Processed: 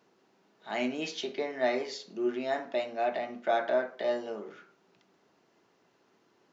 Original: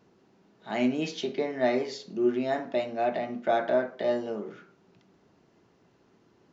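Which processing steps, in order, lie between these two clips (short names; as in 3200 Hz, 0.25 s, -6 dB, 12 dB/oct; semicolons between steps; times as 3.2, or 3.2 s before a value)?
HPF 550 Hz 6 dB/oct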